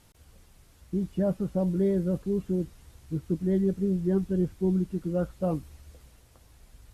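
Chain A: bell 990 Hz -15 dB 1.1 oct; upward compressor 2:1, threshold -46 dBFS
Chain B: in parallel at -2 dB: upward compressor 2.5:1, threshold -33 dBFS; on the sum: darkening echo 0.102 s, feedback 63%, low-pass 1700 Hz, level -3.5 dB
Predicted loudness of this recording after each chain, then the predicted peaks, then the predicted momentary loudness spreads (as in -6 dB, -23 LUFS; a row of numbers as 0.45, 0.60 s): -30.0, -21.0 LUFS; -17.5, -7.5 dBFS; 7, 11 LU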